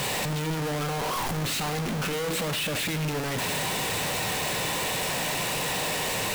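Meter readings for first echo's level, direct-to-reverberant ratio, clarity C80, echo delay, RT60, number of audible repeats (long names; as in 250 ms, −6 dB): no echo audible, 11.0 dB, 16.5 dB, no echo audible, 0.50 s, no echo audible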